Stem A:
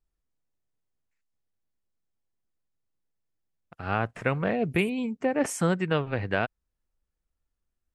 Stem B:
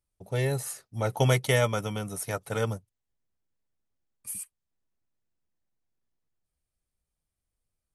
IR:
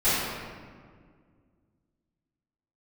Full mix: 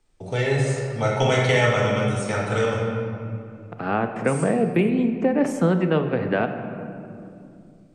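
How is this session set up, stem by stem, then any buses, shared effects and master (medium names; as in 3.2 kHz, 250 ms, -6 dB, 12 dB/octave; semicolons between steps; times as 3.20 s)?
+2.0 dB, 0.00 s, send -22.5 dB, Bessel high-pass 240 Hz, order 8; tilt EQ -3.5 dB/octave
-2.0 dB, 0.00 s, send -10 dB, steep low-pass 8.9 kHz 72 dB/octave; peaking EQ 2.4 kHz +4.5 dB 1.9 oct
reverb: on, RT60 1.9 s, pre-delay 3 ms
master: three bands compressed up and down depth 40%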